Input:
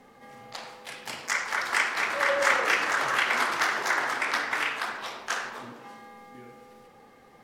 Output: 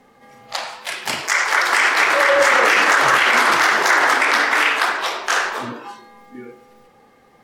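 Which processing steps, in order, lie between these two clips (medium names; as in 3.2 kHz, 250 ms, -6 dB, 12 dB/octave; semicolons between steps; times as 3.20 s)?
spectral noise reduction 12 dB; loudness maximiser +17.5 dB; trim -3.5 dB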